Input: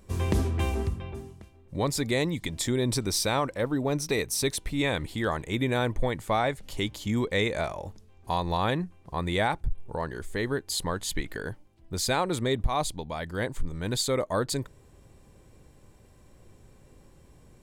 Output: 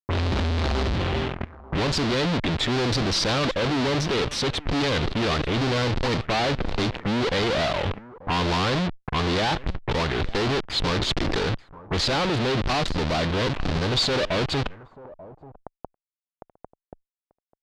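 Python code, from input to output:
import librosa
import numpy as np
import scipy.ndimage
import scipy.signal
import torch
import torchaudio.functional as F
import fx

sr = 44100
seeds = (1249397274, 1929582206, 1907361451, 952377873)

y = fx.wiener(x, sr, points=15)
y = fx.high_shelf(y, sr, hz=3000.0, db=-10.5)
y = fx.fuzz(y, sr, gain_db=50.0, gate_db=-44.0)
y = fx.tube_stage(y, sr, drive_db=31.0, bias=0.5)
y = y + 10.0 ** (-21.0 / 20.0) * np.pad(y, (int(888 * sr / 1000.0), 0))[:len(y)]
y = fx.envelope_lowpass(y, sr, base_hz=670.0, top_hz=4400.0, q=2.0, full_db=-30.0, direction='up')
y = y * 10.0 ** (8.0 / 20.0)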